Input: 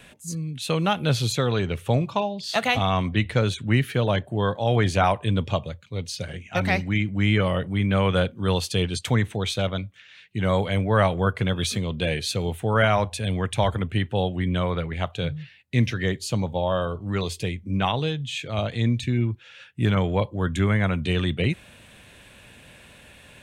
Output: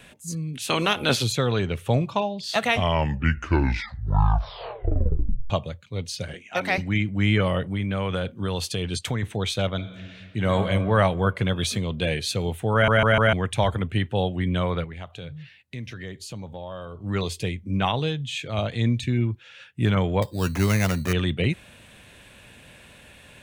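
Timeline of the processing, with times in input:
0.53–1.22 s: spectral peaks clipped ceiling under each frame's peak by 17 dB
2.55 s: tape stop 2.95 s
6.34–6.78 s: high-pass 290 Hz
7.72–9.23 s: compression, threshold -22 dBFS
9.75–10.55 s: reverb throw, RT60 2.4 s, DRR 5.5 dB
12.73 s: stutter in place 0.15 s, 4 plays
14.84–17.04 s: compression 2.5:1, threshold -38 dBFS
20.22–21.13 s: sample-rate reducer 4.2 kHz

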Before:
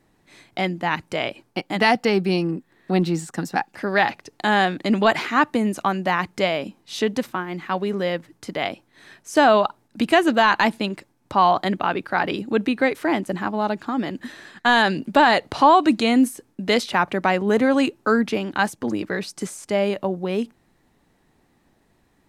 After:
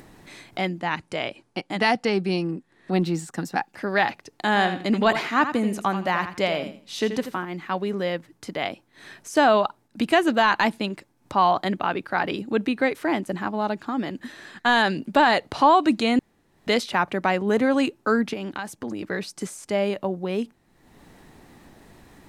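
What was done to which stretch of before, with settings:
0.80–2.93 s: elliptic low-pass 11 kHz
4.47–7.45 s: feedback delay 83 ms, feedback 24%, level -10 dB
16.19–16.67 s: room tone
18.33–19.02 s: compression, threshold -24 dBFS
whole clip: upward compressor, threshold -33 dBFS; trim -2.5 dB

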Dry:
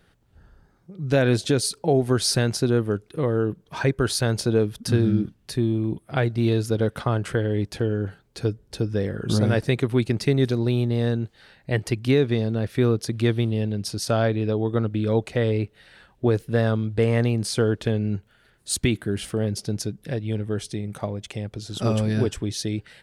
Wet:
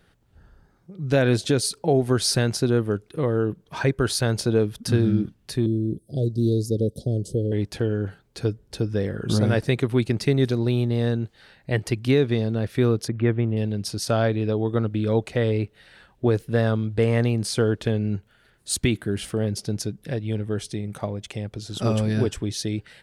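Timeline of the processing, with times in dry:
5.66–7.52 s: inverse Chebyshev band-stop 950–2400 Hz, stop band 50 dB
13.08–13.57 s: low-pass 2.3 kHz 24 dB/octave

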